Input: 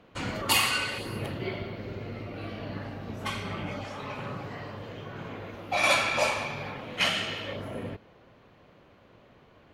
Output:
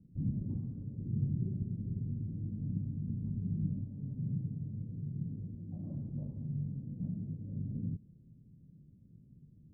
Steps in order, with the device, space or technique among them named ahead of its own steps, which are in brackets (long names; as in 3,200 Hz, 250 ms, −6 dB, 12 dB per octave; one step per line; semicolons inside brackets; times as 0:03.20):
the neighbour's flat through the wall (low-pass filter 230 Hz 24 dB per octave; parametric band 150 Hz +8 dB 0.63 octaves)